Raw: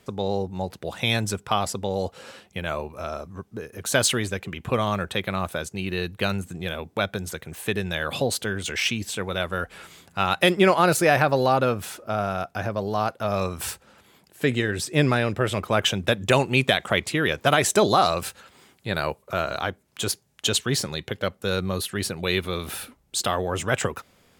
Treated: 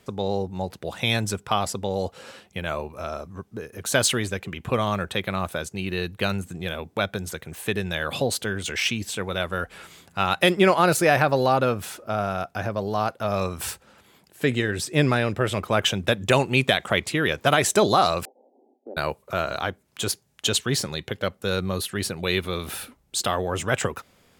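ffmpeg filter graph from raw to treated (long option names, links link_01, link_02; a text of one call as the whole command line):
ffmpeg -i in.wav -filter_complex "[0:a]asettb=1/sr,asplit=3[link_01][link_02][link_03];[link_01]atrim=end=18.254[link_04];[link_02]atrim=start=18.25:end=18.97,asetpts=PTS-STARTPTS,afade=type=in:duration=0.004:curve=qsin,afade=type=out:start_time=0.716:duration=0.004:curve=qsin,asuperpass=centerf=440:order=20:qfactor=0.73,acompressor=threshold=-36dB:ratio=2.5:attack=3.2:release=140:knee=1:detection=peak[link_05];[link_03]atrim=start=18.966[link_06];[link_04][link_05]acrossfade=duration=0.004:curve1=hsin:curve2=qsin[link_07];[link_07][link_06]acrossfade=duration=0.004:curve1=qsin:curve2=hsin" out.wav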